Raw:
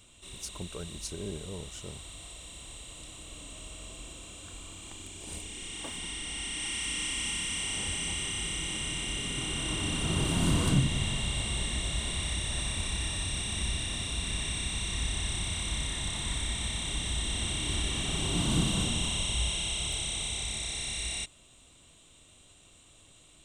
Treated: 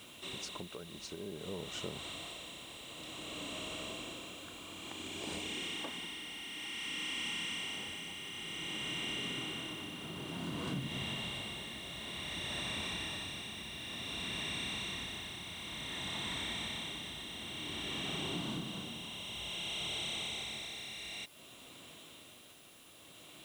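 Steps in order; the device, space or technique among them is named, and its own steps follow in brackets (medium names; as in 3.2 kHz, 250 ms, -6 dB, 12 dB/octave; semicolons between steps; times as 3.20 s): medium wave at night (band-pass 180–4100 Hz; compression, threshold -45 dBFS, peak gain reduction 19 dB; tremolo 0.55 Hz, depth 53%; whistle 10 kHz -74 dBFS; white noise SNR 21 dB); trim +8.5 dB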